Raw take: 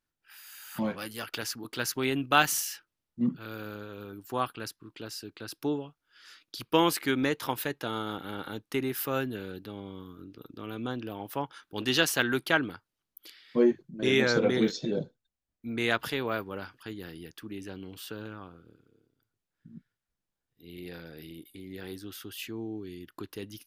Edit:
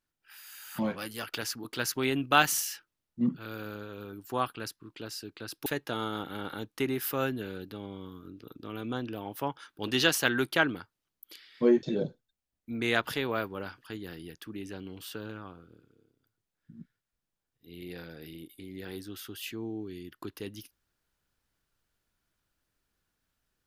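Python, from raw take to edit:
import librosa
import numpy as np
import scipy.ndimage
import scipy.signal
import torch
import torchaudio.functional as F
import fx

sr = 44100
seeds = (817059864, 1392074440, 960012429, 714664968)

y = fx.edit(x, sr, fx.cut(start_s=5.66, length_s=1.94),
    fx.cut(start_s=13.77, length_s=1.02), tone=tone)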